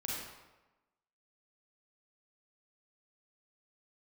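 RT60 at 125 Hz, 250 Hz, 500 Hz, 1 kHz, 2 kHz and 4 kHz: 1.0 s, 1.0 s, 1.1 s, 1.1 s, 0.95 s, 0.75 s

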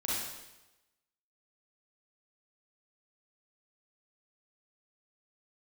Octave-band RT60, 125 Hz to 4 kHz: 1.1 s, 0.95 s, 1.0 s, 1.0 s, 1.0 s, 0.95 s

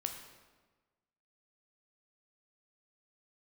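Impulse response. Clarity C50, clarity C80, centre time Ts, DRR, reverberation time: 6.5 dB, 8.5 dB, 28 ms, 4.0 dB, 1.3 s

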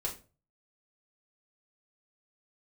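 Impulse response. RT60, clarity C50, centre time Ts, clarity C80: 0.35 s, 11.0 dB, 18 ms, 17.0 dB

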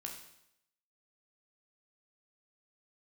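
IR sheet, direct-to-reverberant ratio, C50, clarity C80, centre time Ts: 0.5 dB, 6.0 dB, 8.5 dB, 30 ms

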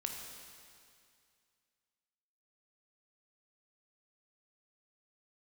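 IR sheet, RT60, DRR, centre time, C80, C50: 2.3 s, 1.5 dB, 73 ms, 4.5 dB, 3.0 dB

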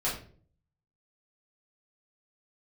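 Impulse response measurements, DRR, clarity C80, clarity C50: -8.0 dB, 11.0 dB, 6.0 dB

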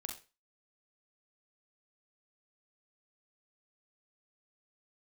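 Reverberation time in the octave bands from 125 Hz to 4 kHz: 0.30 s, 0.30 s, 0.30 s, 0.30 s, 0.30 s, 0.30 s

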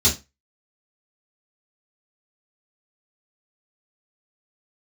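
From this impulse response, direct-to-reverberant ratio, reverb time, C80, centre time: -9.0 dB, 0.25 s, 20.0 dB, 22 ms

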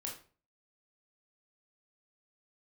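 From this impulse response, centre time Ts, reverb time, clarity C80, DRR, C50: 27 ms, 0.40 s, 12.0 dB, -1.5 dB, 6.5 dB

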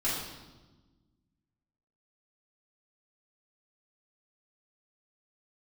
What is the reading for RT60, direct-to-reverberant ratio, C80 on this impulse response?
1.2 s, -11.0 dB, 3.5 dB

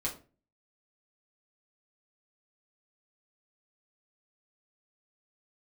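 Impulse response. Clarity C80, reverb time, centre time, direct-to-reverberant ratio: 16.5 dB, 0.35 s, 18 ms, -4.5 dB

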